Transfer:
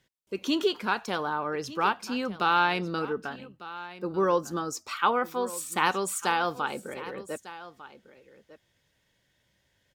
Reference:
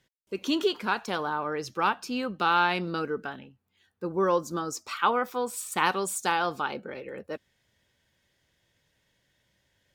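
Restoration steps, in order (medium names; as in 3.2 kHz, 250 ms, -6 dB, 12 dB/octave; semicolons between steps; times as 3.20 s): inverse comb 1200 ms -16.5 dB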